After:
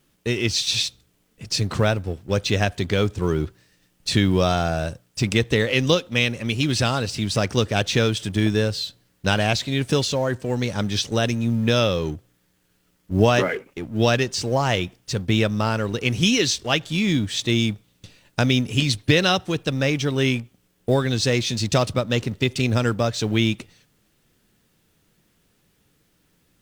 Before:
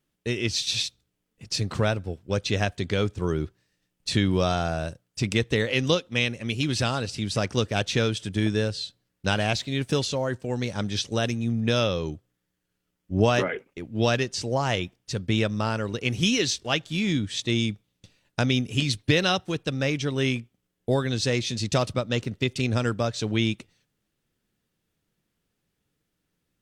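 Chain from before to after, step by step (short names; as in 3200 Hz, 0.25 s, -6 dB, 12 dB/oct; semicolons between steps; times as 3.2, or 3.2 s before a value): G.711 law mismatch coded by mu; gain +3.5 dB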